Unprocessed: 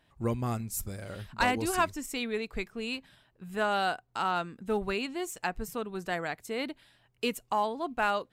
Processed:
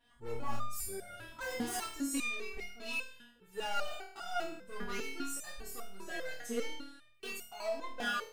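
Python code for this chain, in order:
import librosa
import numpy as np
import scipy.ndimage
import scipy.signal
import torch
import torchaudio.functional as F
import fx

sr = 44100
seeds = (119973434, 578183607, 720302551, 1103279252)

y = np.clip(10.0 ** (33.0 / 20.0) * x, -1.0, 1.0) / 10.0 ** (33.0 / 20.0)
y = fx.room_flutter(y, sr, wall_m=4.4, rt60_s=0.59)
y = fx.resonator_held(y, sr, hz=5.0, low_hz=240.0, high_hz=710.0)
y = y * 10.0 ** (11.0 / 20.0)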